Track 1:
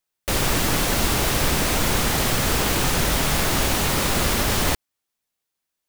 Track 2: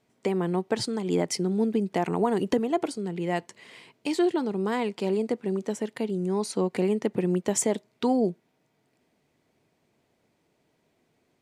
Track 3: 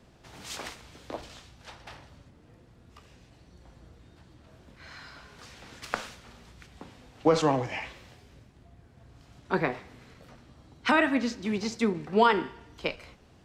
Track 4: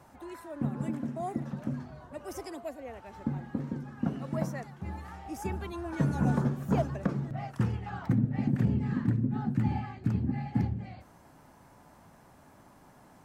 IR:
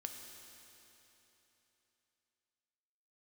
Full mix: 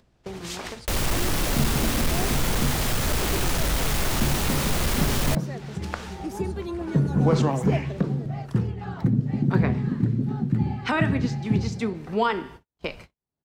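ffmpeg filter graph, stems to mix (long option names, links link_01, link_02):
-filter_complex "[0:a]asoftclip=type=tanh:threshold=-21.5dB,adelay=600,volume=-1dB[link_01];[1:a]bandreject=frequency=46.12:width_type=h:width=4,bandreject=frequency=92.24:width_type=h:width=4,bandreject=frequency=138.36:width_type=h:width=4,bandreject=frequency=184.48:width_type=h:width=4,bandreject=frequency=230.6:width_type=h:width=4,bandreject=frequency=276.72:width_type=h:width=4,bandreject=frequency=322.84:width_type=h:width=4,bandreject=frequency=368.96:width_type=h:width=4,bandreject=frequency=415.08:width_type=h:width=4,bandreject=frequency=461.2:width_type=h:width=4,bandreject=frequency=507.32:width_type=h:width=4,bandreject=frequency=553.44:width_type=h:width=4,bandreject=frequency=599.56:width_type=h:width=4,bandreject=frequency=645.68:width_type=h:width=4,bandreject=frequency=691.8:width_type=h:width=4,bandreject=frequency=737.92:width_type=h:width=4,bandreject=frequency=784.04:width_type=h:width=4,bandreject=frequency=830.16:width_type=h:width=4,bandreject=frequency=876.28:width_type=h:width=4,bandreject=frequency=922.4:width_type=h:width=4,bandreject=frequency=968.52:width_type=h:width=4,bandreject=frequency=1014.64:width_type=h:width=4,bandreject=frequency=1060.76:width_type=h:width=4,bandreject=frequency=1106.88:width_type=h:width=4,bandreject=frequency=1153:width_type=h:width=4,bandreject=frequency=1199.12:width_type=h:width=4,bandreject=frequency=1245.24:width_type=h:width=4,bandreject=frequency=1291.36:width_type=h:width=4,bandreject=frequency=1337.48:width_type=h:width=4,bandreject=frequency=1383.6:width_type=h:width=4,bandreject=frequency=1429.72:width_type=h:width=4,bandreject=frequency=1475.84:width_type=h:width=4,bandreject=frequency=1521.96:width_type=h:width=4,bandreject=frequency=1568.08:width_type=h:width=4,bandreject=frequency=1614.2:width_type=h:width=4,volume=-18.5dB[link_02];[2:a]volume=-2dB[link_03];[3:a]equalizer=frequency=160:width_type=o:width=0.67:gain=8,equalizer=frequency=400:width_type=o:width=0.67:gain=10,equalizer=frequency=4000:width_type=o:width=0.67:gain=6,adelay=950,volume=-2dB[link_04];[link_01][link_02][link_03][link_04]amix=inputs=4:normalize=0,agate=range=-56dB:threshold=-44dB:ratio=16:detection=peak,lowshelf=frequency=94:gain=7.5,acompressor=mode=upward:threshold=-26dB:ratio=2.5"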